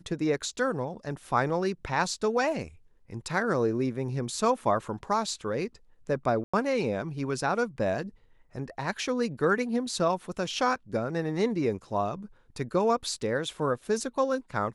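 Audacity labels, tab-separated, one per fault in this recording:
6.440000	6.540000	gap 95 ms

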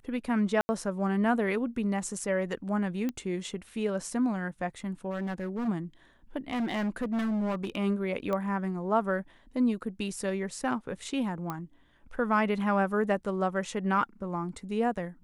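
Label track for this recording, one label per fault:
0.610000	0.690000	gap 80 ms
3.090000	3.090000	pop -20 dBFS
5.100000	5.690000	clipped -29 dBFS
6.500000	7.750000	clipped -26.5 dBFS
8.330000	8.330000	pop -20 dBFS
11.500000	11.500000	pop -20 dBFS

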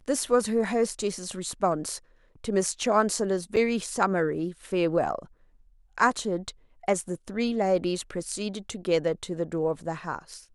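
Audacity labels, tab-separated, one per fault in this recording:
3.560000	3.570000	gap 7.1 ms

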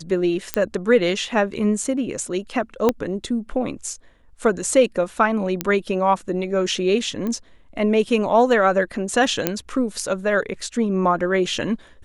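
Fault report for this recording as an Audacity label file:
0.540000	0.540000	pop -4 dBFS
2.890000	2.890000	pop -5 dBFS
5.610000	5.610000	pop -6 dBFS
7.270000	7.270000	pop -16 dBFS
9.470000	9.470000	pop -3 dBFS

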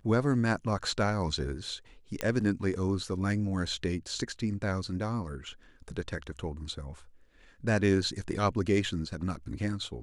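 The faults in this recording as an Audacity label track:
2.210000	2.210000	pop -14 dBFS

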